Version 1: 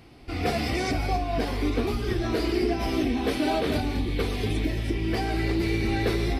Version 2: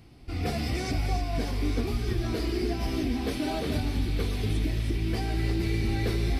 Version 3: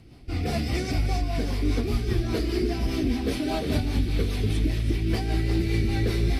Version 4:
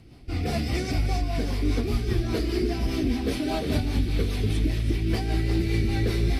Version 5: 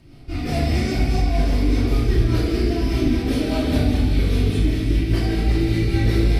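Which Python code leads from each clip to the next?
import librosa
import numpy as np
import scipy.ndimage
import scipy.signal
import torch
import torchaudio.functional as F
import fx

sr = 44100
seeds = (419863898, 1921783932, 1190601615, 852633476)

y1 = fx.bass_treble(x, sr, bass_db=8, treble_db=5)
y1 = fx.echo_wet_highpass(y1, sr, ms=299, feedback_pct=80, hz=1400.0, wet_db=-8)
y1 = y1 * librosa.db_to_amplitude(-7.0)
y2 = fx.rotary(y1, sr, hz=5.0)
y2 = y2 * librosa.db_to_amplitude(4.5)
y3 = y2
y4 = fx.room_shoebox(y3, sr, seeds[0], volume_m3=840.0, walls='mixed', distance_m=2.7)
y4 = y4 * librosa.db_to_amplitude(-1.5)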